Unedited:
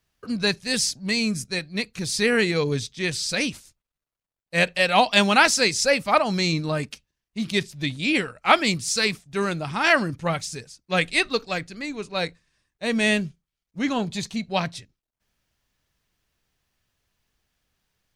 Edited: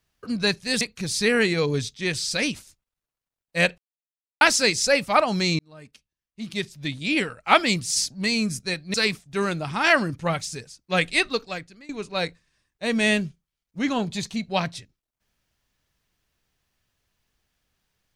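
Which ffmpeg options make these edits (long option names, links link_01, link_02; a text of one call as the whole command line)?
ffmpeg -i in.wav -filter_complex "[0:a]asplit=8[link_01][link_02][link_03][link_04][link_05][link_06][link_07][link_08];[link_01]atrim=end=0.812[link_09];[link_02]atrim=start=1.788:end=4.76,asetpts=PTS-STARTPTS,afade=type=out:start_time=2.968:duration=0.004:curve=hsin[link_10];[link_03]atrim=start=4.76:end=5.39,asetpts=PTS-STARTPTS,volume=0[link_11];[link_04]atrim=start=5.39:end=6.57,asetpts=PTS-STARTPTS,afade=type=in:duration=0.004:curve=hsin,afade=type=out:start_time=1.176:duration=0.004:curve=hsin[link_12];[link_05]atrim=start=6.57:end=8.942,asetpts=PTS-STARTPTS,afade=type=in:duration=1.77[link_13];[link_06]atrim=start=0.808:end=1.792[link_14];[link_07]atrim=start=8.938:end=11.89,asetpts=PTS-STARTPTS,afade=type=out:start_time=2.302:duration=0.65:silence=0.0944061[link_15];[link_08]atrim=start=11.89,asetpts=PTS-STARTPTS,afade=type=in:duration=0.004:curve=hsin:silence=0.0944061[link_16];[link_10][link_11][link_12][link_13]concat=n=4:v=0:a=1[link_17];[link_09][link_17]acrossfade=duration=0.004:curve1=hsin:curve2=hsin[link_18];[link_18][link_14]acrossfade=duration=0.004:curve1=hsin:curve2=hsin[link_19];[link_15][link_16]concat=n=2:v=0:a=1[link_20];[link_19][link_20]acrossfade=duration=0.004:curve1=hsin:curve2=hsin" out.wav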